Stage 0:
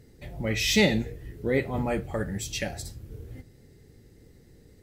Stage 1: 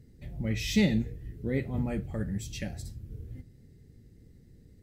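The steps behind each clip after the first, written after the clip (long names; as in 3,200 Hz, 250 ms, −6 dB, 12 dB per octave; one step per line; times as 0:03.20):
drawn EQ curve 220 Hz 0 dB, 370 Hz −7 dB, 1,000 Hz −13 dB, 1,800 Hz −9 dB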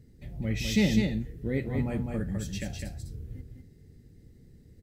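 single-tap delay 204 ms −4.5 dB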